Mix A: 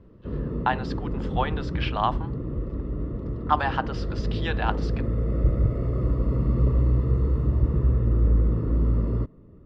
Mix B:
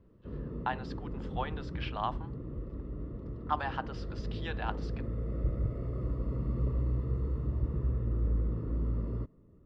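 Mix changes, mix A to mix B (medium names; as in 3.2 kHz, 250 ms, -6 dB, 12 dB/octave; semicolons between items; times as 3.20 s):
speech -9.5 dB; background -10.0 dB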